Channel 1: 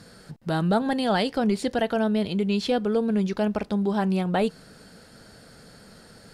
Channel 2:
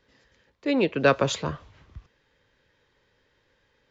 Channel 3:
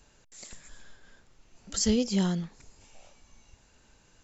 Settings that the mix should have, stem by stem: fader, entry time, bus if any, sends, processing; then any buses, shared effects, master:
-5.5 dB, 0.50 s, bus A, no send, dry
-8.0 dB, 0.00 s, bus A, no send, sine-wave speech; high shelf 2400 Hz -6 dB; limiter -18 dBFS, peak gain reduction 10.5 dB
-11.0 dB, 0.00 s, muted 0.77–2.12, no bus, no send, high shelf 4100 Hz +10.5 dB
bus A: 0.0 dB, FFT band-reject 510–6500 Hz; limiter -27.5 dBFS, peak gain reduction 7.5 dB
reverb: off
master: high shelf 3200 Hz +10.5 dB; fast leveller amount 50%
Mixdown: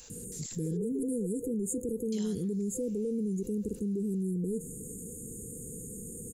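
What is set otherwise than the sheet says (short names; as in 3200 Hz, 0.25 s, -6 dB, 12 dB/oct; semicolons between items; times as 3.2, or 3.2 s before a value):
stem 1: entry 0.50 s -> 0.10 s; stem 3 -11.0 dB -> -21.0 dB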